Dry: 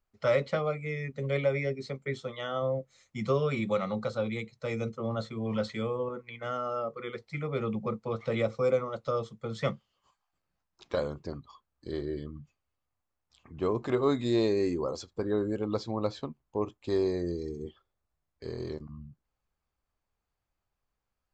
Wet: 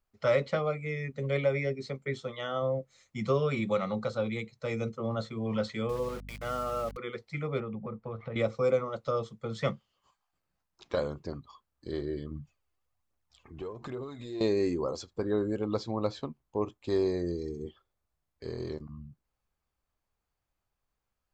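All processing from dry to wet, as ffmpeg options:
ffmpeg -i in.wav -filter_complex "[0:a]asettb=1/sr,asplit=3[link_01][link_02][link_03];[link_01]atrim=end=5.894[link_04];[link_02]atrim=start=5.89:end=6.97,asetpts=PTS-STARTPTS,afade=type=in:duration=0.004:curve=qsin,afade=type=out:start_time=1.076:duration=0.004:curve=qsin,aeval=exprs='val(0)*gte(abs(val(0)),0.0075)':channel_layout=same,aeval=exprs='val(0)+0.00631*(sin(2*PI*50*n/s)+sin(2*PI*2*50*n/s)/2+sin(2*PI*3*50*n/s)/3+sin(2*PI*4*50*n/s)/4+sin(2*PI*5*50*n/s)/5)':channel_layout=same[link_05];[link_03]atrim=start=6.966[link_06];[link_04][link_05]acrossfade=duration=0.004:curve1=hsin:curve2=qsin[link_07];[link_07][link_06]acrossfade=duration=0.004:curve1=qsin:curve2=hsin,asettb=1/sr,asplit=3[link_08][link_09][link_10];[link_08]atrim=end=7.604[link_11];[link_09]atrim=start=7.6:end=8.36,asetpts=PTS-STARTPTS,afade=type=in:duration=0.004:curve=qsin,afade=type=out:start_time=0.756:duration=0.004:curve=qsin,lowpass=2100,asubboost=boost=7.5:cutoff=160,acompressor=threshold=-34dB:ratio=5:attack=3.2:release=140:knee=1:detection=peak[link_12];[link_10]atrim=start=8.356[link_13];[link_11][link_12]acrossfade=duration=0.004:curve1=hsin:curve2=qsin[link_14];[link_14][link_13]acrossfade=duration=0.004:curve1=qsin:curve2=hsin,asettb=1/sr,asplit=3[link_15][link_16][link_17];[link_15]atrim=end=12.314[link_18];[link_16]atrim=start=12.31:end=14.41,asetpts=PTS-STARTPTS,afade=type=in:duration=0.004:curve=qsin,afade=type=out:start_time=2.096:duration=0.004:curve=qsin,acompressor=threshold=-37dB:ratio=12:attack=3.2:release=140:knee=1:detection=peak,aphaser=in_gain=1:out_gain=1:delay=3:decay=0.47:speed=1.2:type=triangular[link_19];[link_17]atrim=start=14.406[link_20];[link_18][link_19]acrossfade=duration=0.004:curve1=hsin:curve2=qsin[link_21];[link_21][link_20]acrossfade=duration=0.004:curve1=qsin:curve2=hsin" out.wav

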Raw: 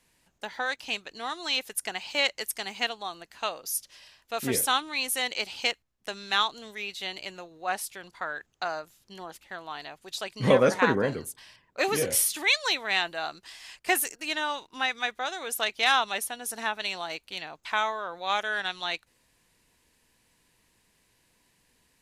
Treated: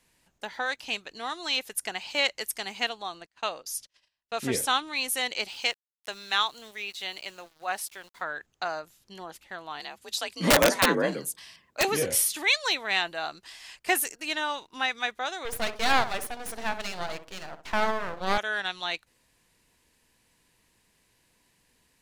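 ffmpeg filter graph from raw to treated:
ffmpeg -i in.wav -filter_complex "[0:a]asettb=1/sr,asplit=3[link_01][link_02][link_03];[link_01]atrim=end=3.024[link_04];[link_02]atrim=start=3.02:end=4.87,asetpts=PTS-STARTPTS,afade=type=in:duration=0.004:curve=qsin,afade=type=out:start_time=1.846:duration=0.004:curve=qsin,agate=range=-27dB:threshold=-50dB:ratio=16:release=100:detection=peak,lowpass=9300[link_05];[link_03]atrim=start=4.866[link_06];[link_04][link_05]acrossfade=duration=0.004:curve1=hsin:curve2=qsin[link_07];[link_07][link_06]acrossfade=duration=0.004:curve1=qsin:curve2=hsin,asettb=1/sr,asplit=3[link_08][link_09][link_10];[link_08]atrim=end=5.484[link_11];[link_09]atrim=start=5.48:end=8.22,asetpts=PTS-STARTPTS,afade=type=in:duration=0.004:curve=qsin,afade=type=out:start_time=2.736:duration=0.004:curve=qsin,lowshelf=frequency=380:gain=-8,aeval=exprs='val(0)*gte(abs(val(0)),0.00282)':channel_layout=same[link_12];[link_10]atrim=start=8.216[link_13];[link_11][link_12]acrossfade=duration=0.004:curve1=hsin:curve2=qsin[link_14];[link_14][link_13]acrossfade=duration=0.004:curve1=qsin:curve2=hsin,asettb=1/sr,asplit=3[link_15][link_16][link_17];[link_15]atrim=end=9.804[link_18];[link_16]atrim=start=9.8:end=11.85,asetpts=PTS-STARTPTS,afade=type=in:duration=0.004:curve=qsin,afade=type=out:start_time=2.046:duration=0.004:curve=qsin,highshelf=frequency=2600:gain=6,afreqshift=49,aeval=exprs='(mod(3.76*val(0)+1,2)-1)/3.76':channel_layout=same[link_19];[link_17]atrim=start=11.846[link_20];[link_18][link_19]acrossfade=duration=0.004:curve1=hsin:curve2=qsin[link_21];[link_21][link_20]acrossfade=duration=0.004:curve1=qsin:curve2=hsin,asettb=1/sr,asplit=3[link_22][link_23][link_24];[link_22]atrim=end=15.454[link_25];[link_23]atrim=start=15.45:end=18.38,asetpts=PTS-STARTPTS,afade=type=in:duration=0.004:curve=qsin,afade=type=out:start_time=2.926:duration=0.004:curve=qsin,equalizer=frequency=490:width=0.42:gain=8,asplit=2[link_26][link_27];[link_27]adelay=64,lowpass=frequency=990:poles=1,volume=-9dB,asplit=2[link_28][link_29];[link_29]adelay=64,lowpass=frequency=990:poles=1,volume=0.36,asplit=2[link_30][link_31];[link_31]adelay=64,lowpass=frequency=990:poles=1,volume=0.36,asplit=2[link_32][link_33];[link_33]adelay=64,lowpass=frequency=990:poles=1,volume=0.36[link_34];[link_26][link_28][link_30][link_32][link_34]amix=inputs=5:normalize=0,atrim=end_sample=129213,aeval=exprs='max(val(0),0)':channel_layout=same[link_35];[link_24]atrim=start=18.376[link_36];[link_25][link_35]acrossfade=duration=0.004:curve1=hsin:curve2=qsin[link_37];[link_37][link_36]acrossfade=duration=0.004:curve1=qsin:curve2=hsin" out.wav

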